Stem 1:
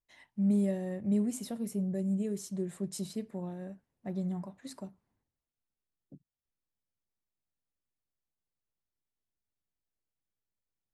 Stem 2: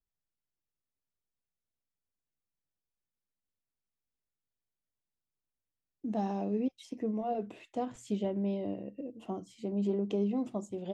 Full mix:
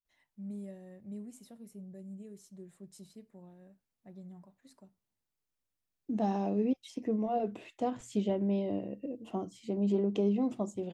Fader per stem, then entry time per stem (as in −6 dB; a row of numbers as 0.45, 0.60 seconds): −14.5, +2.0 decibels; 0.00, 0.05 seconds